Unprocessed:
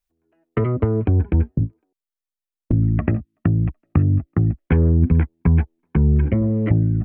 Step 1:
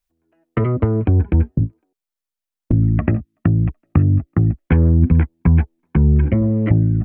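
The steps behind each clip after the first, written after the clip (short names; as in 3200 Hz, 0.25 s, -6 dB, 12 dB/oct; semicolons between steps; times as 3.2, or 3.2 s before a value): notch 420 Hz, Q 12; gain +2.5 dB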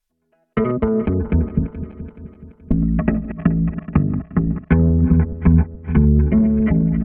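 regenerating reverse delay 0.213 s, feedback 66%, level -12 dB; treble ducked by the level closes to 1200 Hz, closed at -9.5 dBFS; comb 4.7 ms, depth 99%; gain -1.5 dB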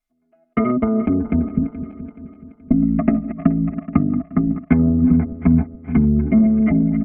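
small resonant body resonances 270/680/1200/2100 Hz, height 16 dB, ringing for 40 ms; gain -8 dB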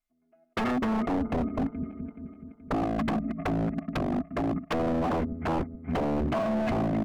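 wavefolder -17 dBFS; gain -5 dB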